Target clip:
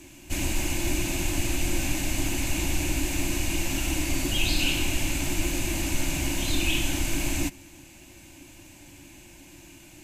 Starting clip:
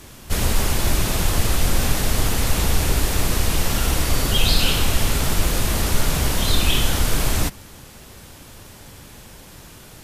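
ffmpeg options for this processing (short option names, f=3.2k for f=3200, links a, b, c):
-af "superequalizer=6b=3.55:7b=0.282:10b=0.447:12b=2.51:15b=2,volume=-9dB"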